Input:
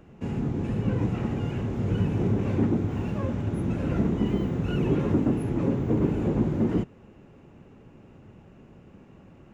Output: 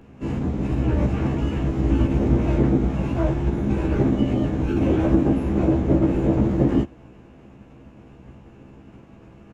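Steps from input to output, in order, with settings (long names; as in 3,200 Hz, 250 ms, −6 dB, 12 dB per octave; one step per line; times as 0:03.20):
dynamic equaliser 550 Hz, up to +7 dB, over −48 dBFS, Q 4.5
phase-vocoder pitch shift with formants kept −9 semitones
double-tracking delay 15 ms −4 dB
level +5 dB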